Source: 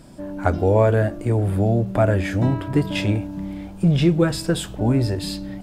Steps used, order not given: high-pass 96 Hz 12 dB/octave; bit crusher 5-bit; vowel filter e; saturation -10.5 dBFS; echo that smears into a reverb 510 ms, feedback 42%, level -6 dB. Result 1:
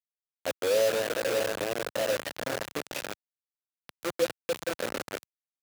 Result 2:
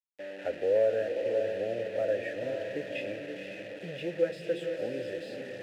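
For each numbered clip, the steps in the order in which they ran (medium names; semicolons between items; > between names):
echo that smears into a reverb > saturation > vowel filter > bit crusher > high-pass; echo that smears into a reverb > saturation > high-pass > bit crusher > vowel filter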